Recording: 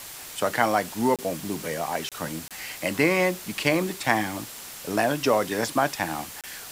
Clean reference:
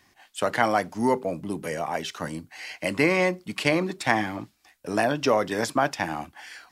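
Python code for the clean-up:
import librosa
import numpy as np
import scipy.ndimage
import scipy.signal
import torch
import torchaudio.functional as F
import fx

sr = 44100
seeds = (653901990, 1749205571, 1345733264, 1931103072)

y = fx.notch(x, sr, hz=7600.0, q=30.0)
y = fx.fix_interpolate(y, sr, at_s=(1.16, 2.09, 2.48, 6.41), length_ms=27.0)
y = fx.noise_reduce(y, sr, print_start_s=4.38, print_end_s=4.88, reduce_db=18.0)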